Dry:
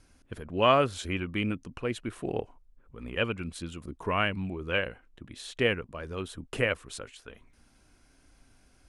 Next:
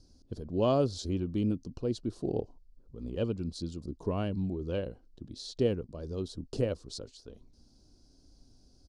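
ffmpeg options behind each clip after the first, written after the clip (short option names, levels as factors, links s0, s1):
-af "firequalizer=gain_entry='entry(340,0);entry(1200,-17);entry(2100,-27);entry(4500,5);entry(8300,-10);entry(12000,-17)':delay=0.05:min_phase=1,volume=1.19"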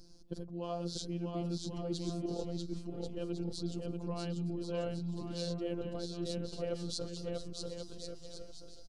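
-af "areverse,acompressor=threshold=0.0141:ratio=12,areverse,afftfilt=real='hypot(re,im)*cos(PI*b)':imag='0':win_size=1024:overlap=0.75,aecho=1:1:640|1088|1402|1621|1775:0.631|0.398|0.251|0.158|0.1,volume=2.24"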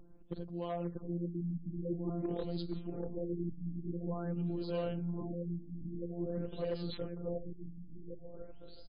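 -af "asoftclip=type=hard:threshold=0.0335,afftfilt=real='re*lt(b*sr/1024,300*pow(5100/300,0.5+0.5*sin(2*PI*0.48*pts/sr)))':imag='im*lt(b*sr/1024,300*pow(5100/300,0.5+0.5*sin(2*PI*0.48*pts/sr)))':win_size=1024:overlap=0.75,volume=1.12"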